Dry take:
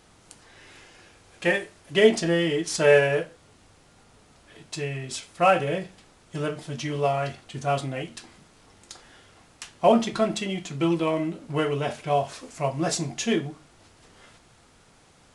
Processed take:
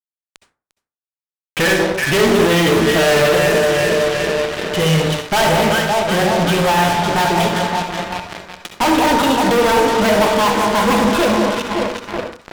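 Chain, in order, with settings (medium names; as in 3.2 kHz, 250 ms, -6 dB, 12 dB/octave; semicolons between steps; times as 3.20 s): gliding tape speed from 86% -> 159%; elliptic low-pass 3.4 kHz, stop band 50 dB; bass shelf 91 Hz +4 dB; echo whose repeats swap between lows and highs 187 ms, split 1.1 kHz, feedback 81%, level -9.5 dB; fuzz box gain 40 dB, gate -39 dBFS; on a send at -5.5 dB: reverberation RT60 0.35 s, pre-delay 57 ms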